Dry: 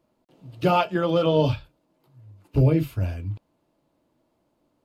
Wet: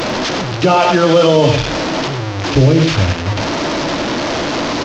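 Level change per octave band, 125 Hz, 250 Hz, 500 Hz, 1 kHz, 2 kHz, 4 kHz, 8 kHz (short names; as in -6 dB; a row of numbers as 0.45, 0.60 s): +9.5 dB, +12.0 dB, +12.0 dB, +12.5 dB, +18.0 dB, +18.5 dB, n/a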